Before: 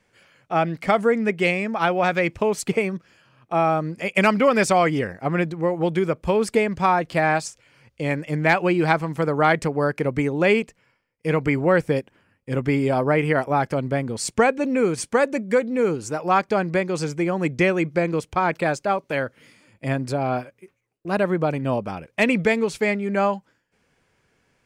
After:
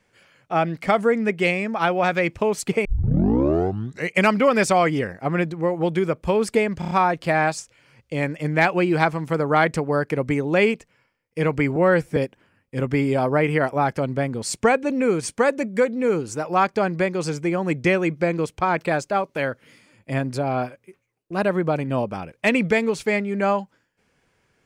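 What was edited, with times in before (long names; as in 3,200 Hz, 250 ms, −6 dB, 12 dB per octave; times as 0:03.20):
0:02.85: tape start 1.37 s
0:06.79: stutter 0.03 s, 5 plays
0:11.64–0:11.91: time-stretch 1.5×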